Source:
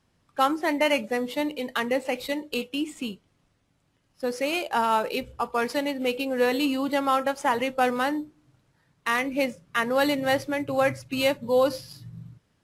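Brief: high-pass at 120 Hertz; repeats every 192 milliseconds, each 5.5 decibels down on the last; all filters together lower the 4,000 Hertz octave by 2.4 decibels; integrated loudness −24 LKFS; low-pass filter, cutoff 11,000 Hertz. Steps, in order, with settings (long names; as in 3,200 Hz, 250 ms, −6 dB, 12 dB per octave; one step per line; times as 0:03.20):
high-pass filter 120 Hz
low-pass filter 11,000 Hz
parametric band 4,000 Hz −3.5 dB
repeating echo 192 ms, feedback 53%, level −5.5 dB
level +1 dB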